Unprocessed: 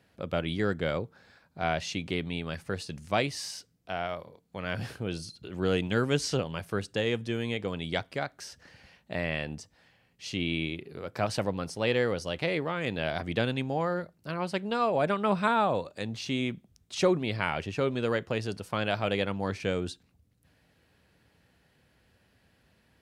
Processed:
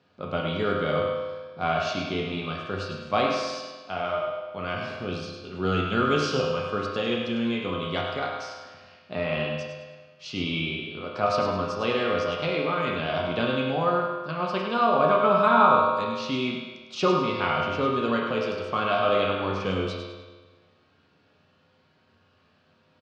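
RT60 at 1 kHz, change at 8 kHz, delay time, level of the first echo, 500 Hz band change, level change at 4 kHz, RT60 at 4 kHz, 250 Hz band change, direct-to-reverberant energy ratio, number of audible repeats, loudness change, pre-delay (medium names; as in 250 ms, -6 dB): 1.4 s, no reading, 103 ms, -6.5 dB, +5.0 dB, +4.0 dB, 1.3 s, +3.0 dB, -3.5 dB, 1, +5.0 dB, 5 ms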